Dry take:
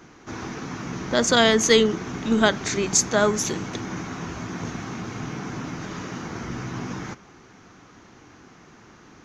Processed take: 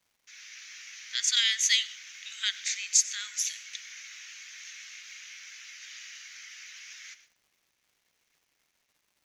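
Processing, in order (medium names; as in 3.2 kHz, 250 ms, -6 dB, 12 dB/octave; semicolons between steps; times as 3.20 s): steep high-pass 2 kHz 36 dB/octave; gate -56 dBFS, range -19 dB; level rider gain up to 4.5 dB; crackle 430 per s -54 dBFS; on a send: reverberation RT60 0.40 s, pre-delay 83 ms, DRR 17 dB; on the sum: trim -5.5 dB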